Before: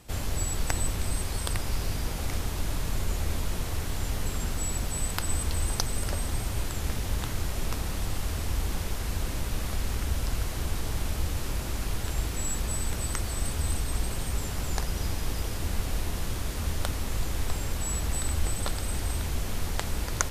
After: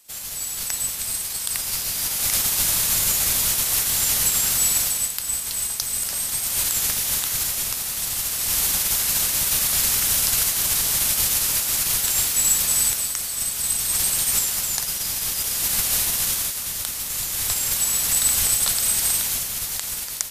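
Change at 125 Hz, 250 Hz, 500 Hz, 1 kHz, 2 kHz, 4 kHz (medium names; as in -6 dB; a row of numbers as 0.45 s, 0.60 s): -8.5 dB, -4.0 dB, -2.0 dB, +2.0 dB, +7.5 dB, +13.0 dB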